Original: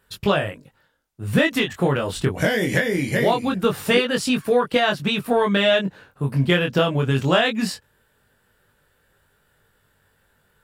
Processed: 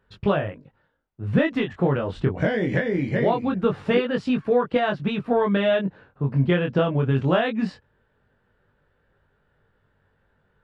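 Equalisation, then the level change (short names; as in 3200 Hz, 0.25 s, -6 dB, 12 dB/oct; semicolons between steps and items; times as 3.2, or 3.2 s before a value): tape spacing loss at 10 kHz 34 dB; 0.0 dB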